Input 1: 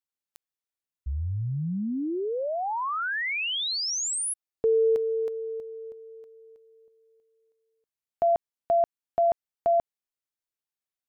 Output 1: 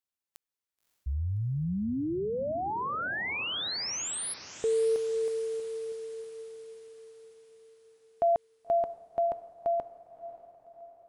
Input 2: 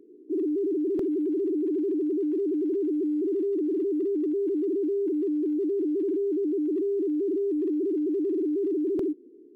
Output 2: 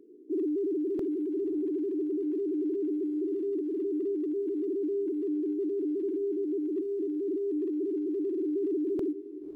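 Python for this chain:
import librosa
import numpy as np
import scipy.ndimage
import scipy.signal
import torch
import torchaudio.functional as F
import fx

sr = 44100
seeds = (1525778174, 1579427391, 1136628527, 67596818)

p1 = fx.rider(x, sr, range_db=4, speed_s=2.0)
p2 = p1 + fx.echo_diffused(p1, sr, ms=579, feedback_pct=55, wet_db=-14, dry=0)
y = p2 * librosa.db_to_amplitude(-4.5)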